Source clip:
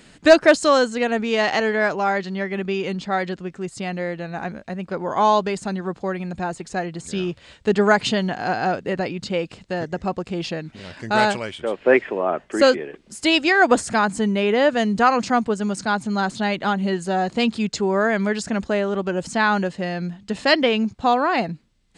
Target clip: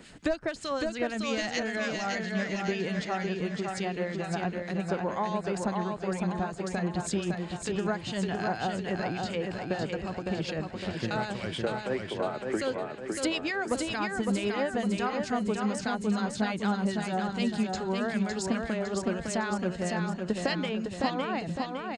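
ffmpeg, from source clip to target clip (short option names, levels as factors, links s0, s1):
-filter_complex "[0:a]asettb=1/sr,asplit=3[s0][s1][s2];[s0]atrim=end=1.144[s3];[s1]atrim=start=1.14:end=2.61,asetpts=PTS-STARTPTS,afade=t=in:d=0.004:c=qsin,afade=t=out:st=1.466:d=0.004:c=qsin,equalizer=f=400:t=o:w=0.67:g=-9,equalizer=f=1000:t=o:w=0.67:g=-9,equalizer=f=6300:t=o:w=0.67:g=9[s4];[s2]atrim=start=2.606[s5];[s3][s4]acrossfade=d=0.004:c1=hsin:c2=qsin[s6];[s6][s5]acrossfade=d=0.004:c1=qsin:c2=hsin,acrossover=split=130[s7][s8];[s8]acompressor=threshold=0.0447:ratio=10[s9];[s7][s9]amix=inputs=2:normalize=0,acrossover=split=1500[s10][s11];[s10]aeval=exprs='val(0)*(1-0.7/2+0.7/2*cos(2*PI*6.7*n/s))':c=same[s12];[s11]aeval=exprs='val(0)*(1-0.7/2-0.7/2*cos(2*PI*6.7*n/s))':c=same[s13];[s12][s13]amix=inputs=2:normalize=0,aecho=1:1:558|1116|1674|2232|2790|3348|3906:0.631|0.322|0.164|0.0837|0.0427|0.0218|0.0111,volume=1.19"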